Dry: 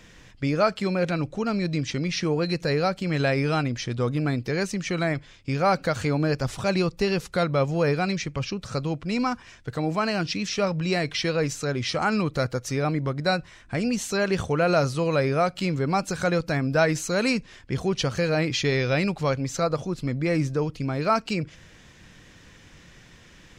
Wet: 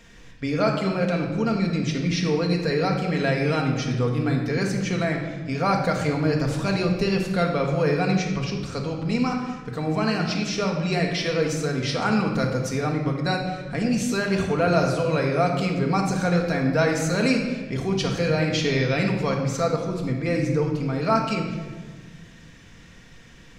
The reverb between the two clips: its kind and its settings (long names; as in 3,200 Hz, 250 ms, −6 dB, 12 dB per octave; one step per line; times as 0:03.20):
rectangular room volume 1,300 cubic metres, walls mixed, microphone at 1.7 metres
level −2 dB